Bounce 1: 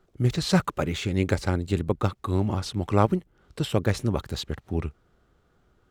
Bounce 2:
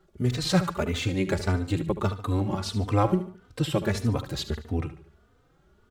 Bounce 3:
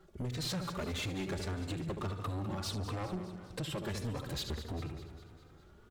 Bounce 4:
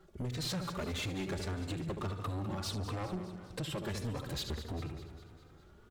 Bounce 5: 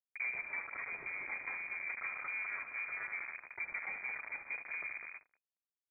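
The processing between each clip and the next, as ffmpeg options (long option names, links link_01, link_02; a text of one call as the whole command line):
ffmpeg -i in.wav -filter_complex "[0:a]asplit=2[link_01][link_02];[link_02]acompressor=threshold=-29dB:ratio=6,volume=-2.5dB[link_03];[link_01][link_03]amix=inputs=2:normalize=0,aecho=1:1:73|146|219|292:0.237|0.0996|0.0418|0.0176,asplit=2[link_04][link_05];[link_05]adelay=3.2,afreqshift=1.6[link_06];[link_04][link_06]amix=inputs=2:normalize=1" out.wav
ffmpeg -i in.wav -af "acompressor=threshold=-32dB:ratio=4,asoftclip=type=tanh:threshold=-34.5dB,aecho=1:1:201|402|603|804|1005|1206:0.237|0.138|0.0798|0.0463|0.0268|0.0156,volume=1.5dB" out.wav
ffmpeg -i in.wav -af anull out.wav
ffmpeg -i in.wav -af "alimiter=level_in=16.5dB:limit=-24dB:level=0:latency=1:release=66,volume=-16.5dB,acrusher=bits=6:mix=0:aa=0.5,lowpass=frequency=2100:width_type=q:width=0.5098,lowpass=frequency=2100:width_type=q:width=0.6013,lowpass=frequency=2100:width_type=q:width=0.9,lowpass=frequency=2100:width_type=q:width=2.563,afreqshift=-2500,volume=6dB" out.wav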